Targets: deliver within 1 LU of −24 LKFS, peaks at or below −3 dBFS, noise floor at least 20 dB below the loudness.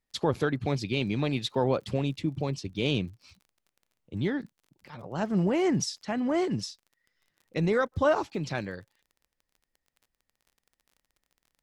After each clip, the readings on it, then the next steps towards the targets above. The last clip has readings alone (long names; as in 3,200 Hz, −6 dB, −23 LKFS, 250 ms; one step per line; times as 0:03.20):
crackle rate 32 per second; integrated loudness −29.0 LKFS; sample peak −13.0 dBFS; target loudness −24.0 LKFS
→ click removal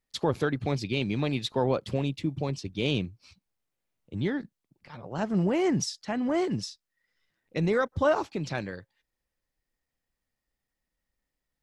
crackle rate 0.086 per second; integrated loudness −29.0 LKFS; sample peak −13.0 dBFS; target loudness −24.0 LKFS
→ level +5 dB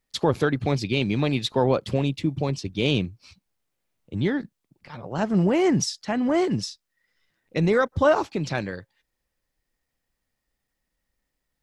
integrated loudness −24.0 LKFS; sample peak −8.0 dBFS; background noise floor −81 dBFS